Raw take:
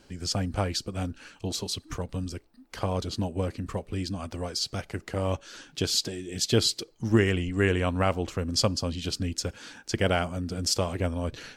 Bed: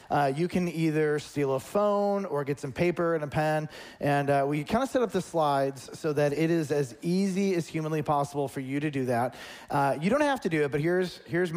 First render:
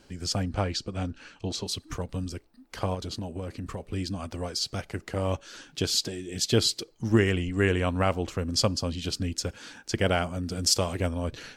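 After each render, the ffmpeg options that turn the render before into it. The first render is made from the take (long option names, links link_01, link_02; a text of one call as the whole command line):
ffmpeg -i in.wav -filter_complex "[0:a]asettb=1/sr,asplit=3[link_01][link_02][link_03];[link_01]atrim=end=0.434[link_04];[link_02]atrim=start=0.43:end=1.67,asetpts=PTS-STARTPTS,afade=type=in:duration=0.004:curve=qsin,afade=type=out:start_time=1.236:duration=0.004:curve=qsin,lowpass=6500[link_05];[link_03]atrim=start=1.666[link_06];[link_04][link_05]acrossfade=duration=0.004:curve1=hsin:curve2=qsin[link_07];[link_07][link_06]acrossfade=duration=0.004:curve1=qsin:curve2=hsin,asettb=1/sr,asplit=3[link_08][link_09][link_10];[link_08]atrim=end=2.944[link_11];[link_09]atrim=start=2.94:end=3.8,asetpts=PTS-STARTPTS,afade=type=in:duration=0.004:curve=qsin,afade=type=out:start_time=0.856:duration=0.004:curve=qsin,acompressor=threshold=-30dB:ratio=6:attack=3.2:release=140:knee=1:detection=peak[link_12];[link_10]atrim=start=3.796[link_13];[link_11][link_12]acrossfade=duration=0.004:curve1=hsin:curve2=qsin[link_14];[link_14][link_13]acrossfade=duration=0.004:curve1=qsin:curve2=hsin,asettb=1/sr,asplit=3[link_15][link_16][link_17];[link_15]atrim=end=10.434[link_18];[link_16]atrim=start=10.43:end=11.09,asetpts=PTS-STARTPTS,afade=type=in:duration=0.004:curve=qsin,afade=type=out:start_time=0.656:duration=0.004:curve=qsin,equalizer=frequency=12000:width_type=o:width=2.8:gain=4.5[link_19];[link_17]atrim=start=11.086[link_20];[link_18][link_19]acrossfade=duration=0.004:curve1=hsin:curve2=qsin[link_21];[link_21][link_20]acrossfade=duration=0.004:curve1=qsin:curve2=hsin" out.wav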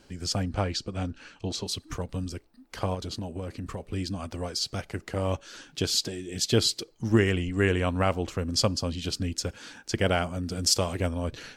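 ffmpeg -i in.wav -af anull out.wav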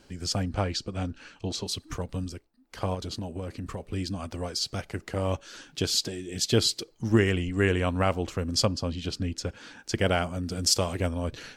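ffmpeg -i in.wav -filter_complex "[0:a]asettb=1/sr,asplit=3[link_01][link_02][link_03];[link_01]atrim=end=8.654[link_04];[link_02]atrim=start=8.65:end=9.79,asetpts=PTS-STARTPTS,afade=type=in:duration=0.004:curve=qsin,afade=type=out:start_time=1.136:duration=0.004:curve=qsin,lowpass=frequency=3800:poles=1[link_05];[link_03]atrim=start=9.786[link_06];[link_04][link_05]acrossfade=duration=0.004:curve1=hsin:curve2=qsin[link_07];[link_07][link_06]acrossfade=duration=0.004:curve1=qsin:curve2=hsin,asplit=3[link_08][link_09][link_10];[link_08]atrim=end=2.51,asetpts=PTS-STARTPTS,afade=type=out:start_time=2.23:duration=0.28:silence=0.298538[link_11];[link_09]atrim=start=2.51:end=2.6,asetpts=PTS-STARTPTS,volume=-10.5dB[link_12];[link_10]atrim=start=2.6,asetpts=PTS-STARTPTS,afade=type=in:duration=0.28:silence=0.298538[link_13];[link_11][link_12][link_13]concat=n=3:v=0:a=1" out.wav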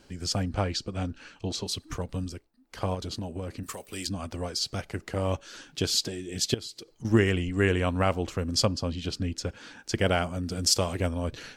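ffmpeg -i in.wav -filter_complex "[0:a]asettb=1/sr,asplit=3[link_01][link_02][link_03];[link_01]atrim=end=3.634[link_04];[link_02]atrim=start=3.63:end=4.07,asetpts=PTS-STARTPTS,afade=type=in:duration=0.004:curve=qsin,afade=type=out:start_time=0.436:duration=0.004:curve=qsin,aemphasis=mode=production:type=riaa[link_05];[link_03]atrim=start=4.066[link_06];[link_04][link_05]acrossfade=duration=0.004:curve1=hsin:curve2=qsin[link_07];[link_07][link_06]acrossfade=duration=0.004:curve1=qsin:curve2=hsin,asettb=1/sr,asplit=3[link_08][link_09][link_10];[link_08]atrim=end=6.544[link_11];[link_09]atrim=start=6.54:end=7.05,asetpts=PTS-STARTPTS,afade=type=in:duration=0.004:curve=qsin,afade=type=out:start_time=0.506:duration=0.004:curve=qsin,acompressor=threshold=-41dB:ratio=3:attack=3.2:release=140:knee=1:detection=peak[link_12];[link_10]atrim=start=7.046[link_13];[link_11][link_12]acrossfade=duration=0.004:curve1=hsin:curve2=qsin[link_14];[link_14][link_13]acrossfade=duration=0.004:curve1=qsin:curve2=hsin" out.wav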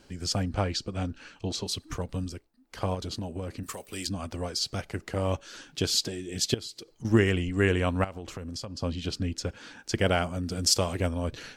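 ffmpeg -i in.wav -filter_complex "[0:a]asettb=1/sr,asplit=3[link_01][link_02][link_03];[link_01]atrim=end=8.044[link_04];[link_02]atrim=start=8.04:end=8.82,asetpts=PTS-STARTPTS,afade=type=in:duration=0.004:curve=qsin,afade=type=out:start_time=0.776:duration=0.004:curve=qsin,acompressor=threshold=-33dB:ratio=16:attack=3.2:release=140:knee=1:detection=peak[link_05];[link_03]atrim=start=8.816[link_06];[link_04][link_05]acrossfade=duration=0.004:curve1=hsin:curve2=qsin[link_07];[link_07][link_06]acrossfade=duration=0.004:curve1=qsin:curve2=hsin" out.wav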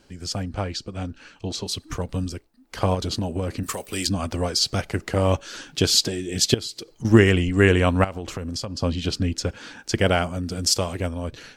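ffmpeg -i in.wav -af "dynaudnorm=framelen=460:gausssize=9:maxgain=9.5dB" out.wav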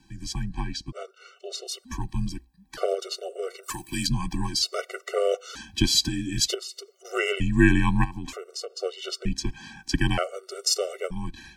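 ffmpeg -i in.wav -af "afreqshift=-64,afftfilt=real='re*gt(sin(2*PI*0.54*pts/sr)*(1-2*mod(floor(b*sr/1024/380),2)),0)':imag='im*gt(sin(2*PI*0.54*pts/sr)*(1-2*mod(floor(b*sr/1024/380),2)),0)':win_size=1024:overlap=0.75" out.wav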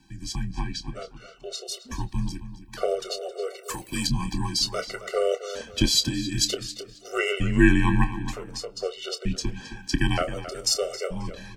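ffmpeg -i in.wav -filter_complex "[0:a]asplit=2[link_01][link_02];[link_02]adelay=27,volume=-12dB[link_03];[link_01][link_03]amix=inputs=2:normalize=0,asplit=2[link_04][link_05];[link_05]adelay=268,lowpass=frequency=4000:poles=1,volume=-12dB,asplit=2[link_06][link_07];[link_07]adelay=268,lowpass=frequency=4000:poles=1,volume=0.32,asplit=2[link_08][link_09];[link_09]adelay=268,lowpass=frequency=4000:poles=1,volume=0.32[link_10];[link_04][link_06][link_08][link_10]amix=inputs=4:normalize=0" out.wav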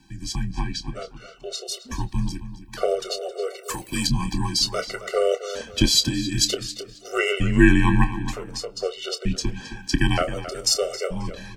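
ffmpeg -i in.wav -af "volume=3dB,alimiter=limit=-2dB:level=0:latency=1" out.wav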